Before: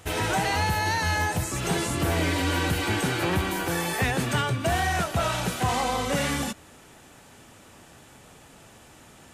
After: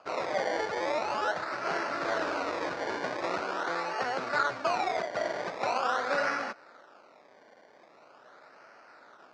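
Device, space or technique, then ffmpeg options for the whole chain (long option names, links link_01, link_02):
circuit-bent sampling toy: -filter_complex "[0:a]asettb=1/sr,asplit=3[link_01][link_02][link_03];[link_01]atrim=end=3.694[link_04];[link_02]atrim=start=3.69:end=4.37,asetpts=PTS-STARTPTS,afade=type=in:duration=0.004:curve=qsin,afade=type=out:start_time=0.676:duration=0.004:curve=qsin,highshelf=frequency=1800:width_type=q:width=1.5:gain=-12.5[link_05];[link_03]atrim=start=4.366[link_06];[link_04][link_05]acrossfade=duration=0.004:curve1=hsin:curve2=qsin[link_07];[link_07][link_06]acrossfade=duration=0.004:curve1=qsin:curve2=hsin,acrusher=samples=23:mix=1:aa=0.000001:lfo=1:lforange=23:lforate=0.43,highpass=470,equalizer=frequency=600:width_type=q:width=4:gain=5,equalizer=frequency=1400:width_type=q:width=4:gain=9,equalizer=frequency=3200:width_type=q:width=4:gain=-8,lowpass=frequency=5300:width=0.5412,lowpass=frequency=5300:width=1.3066,volume=-3.5dB"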